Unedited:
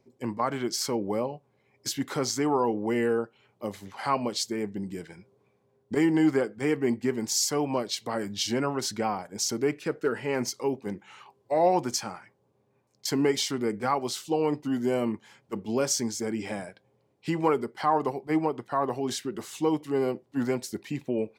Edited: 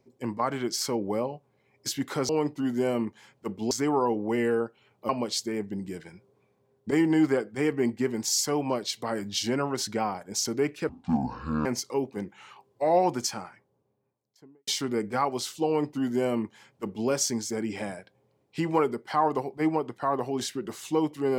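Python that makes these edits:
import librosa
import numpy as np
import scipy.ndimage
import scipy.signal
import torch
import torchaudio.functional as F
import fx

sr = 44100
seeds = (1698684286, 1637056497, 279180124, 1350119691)

y = fx.studio_fade_out(x, sr, start_s=11.92, length_s=1.45)
y = fx.edit(y, sr, fx.cut(start_s=3.67, length_s=0.46),
    fx.speed_span(start_s=9.93, length_s=0.42, speed=0.55),
    fx.duplicate(start_s=14.36, length_s=1.42, to_s=2.29), tone=tone)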